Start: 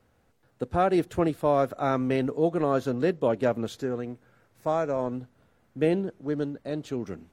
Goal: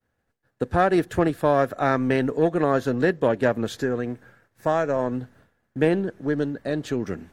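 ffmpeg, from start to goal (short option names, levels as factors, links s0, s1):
-filter_complex "[0:a]aeval=exprs='0.282*(cos(1*acos(clip(val(0)/0.282,-1,1)))-cos(1*PI/2))+0.0355*(cos(2*acos(clip(val(0)/0.282,-1,1)))-cos(2*PI/2))+0.00631*(cos(8*acos(clip(val(0)/0.282,-1,1)))-cos(8*PI/2))':c=same,agate=range=0.0224:threshold=0.002:ratio=3:detection=peak,equalizer=f=1700:t=o:w=0.23:g=10,asplit=2[s0][s1];[s1]acompressor=threshold=0.0282:ratio=6,volume=1.41[s2];[s0][s2]amix=inputs=2:normalize=0"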